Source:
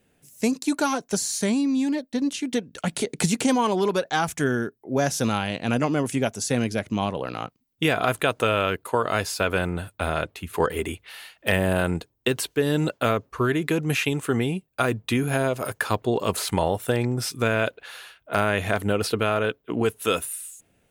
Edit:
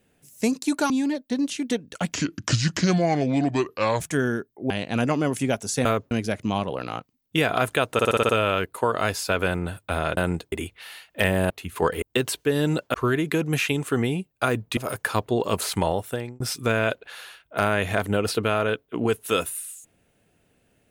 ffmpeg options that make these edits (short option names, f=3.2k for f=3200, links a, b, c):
-filter_complex "[0:a]asplit=20[a][b][c][d][e][f][g][h][i][j][k][l][m][n][o][p][q][r][s][t];[a]atrim=end=0.902[u];[b]atrim=start=1.728:end=2.964[v];[c]atrim=start=2.96:end=4.27,asetpts=PTS-STARTPTS,asetrate=30870,aresample=44100[w];[d]atrim=start=4.266:end=4.972[x];[e]atrim=start=5.428:end=6.582[y];[f]atrim=start=13.048:end=13.312[z];[g]atrim=start=6.578:end=8.462[aa];[h]atrim=start=8.398:end=8.462[ab];[i]atrim=start=8.398:end=8.462[ac];[j]atrim=start=8.398:end=8.462[ad];[k]atrim=start=8.398:end=8.462[ae];[l]atrim=start=8.398:end=8.462[af];[m]atrim=start=8.398:end=10.282[ag];[n]atrim=start=11.778:end=12.132[ah];[o]atrim=start=10.798:end=11.782[ai];[p]atrim=start=10.278:end=10.802[aj];[q]atrim=start=12.128:end=13.052[ak];[r]atrim=start=13.308:end=15.142[al];[s]atrim=start=15.528:end=17.16,asetpts=PTS-STARTPTS,afade=t=out:st=0.922:d=0.71:c=qsin[am];[t]atrim=start=17.16,asetpts=PTS-STARTPTS,afade=t=in:d=0.004:c=hsin[an];[u][v]acrossfade=d=0.004:c1=hsin:c2=hsin[ao];[ao][w]acrossfade=d=0.004:c1=hsin:c2=hsin[ap];[ap][x]acrossfade=d=0.004:c1=hsin:c2=hsin[aq];[aq][y]acrossfade=d=0.004:c1=hsin:c2=hsin[ar];[ar][z]acrossfade=d=0.004:c1=hsin:c2=hsin[as];[as][aa]acrossfade=d=0.004:c1=hsin:c2=hsin[at];[at][ab]acrossfade=d=0.004:c1=hsin:c2=hsin[au];[au][ac]acrossfade=d=0.004:c1=hsin:c2=hsin[av];[av][ad]acrossfade=d=0.004:c1=hsin:c2=hsin[aw];[aw][ae]acrossfade=d=0.004:c1=hsin:c2=hsin[ax];[ax][af]acrossfade=d=0.004:c1=hsin:c2=hsin[ay];[ay][ag]acrossfade=d=0.004:c1=hsin:c2=hsin[az];[az][ah]acrossfade=d=0.004:c1=hsin:c2=hsin[ba];[ba][ai]acrossfade=d=0.004:c1=hsin:c2=hsin[bb];[bb][aj]acrossfade=d=0.004:c1=hsin:c2=hsin[bc];[bc][ak]acrossfade=d=0.004:c1=hsin:c2=hsin[bd];[bd][al]acrossfade=d=0.004:c1=hsin:c2=hsin[be];[am][an]concat=n=2:v=0:a=1[bf];[be][bf]acrossfade=d=0.004:c1=hsin:c2=hsin"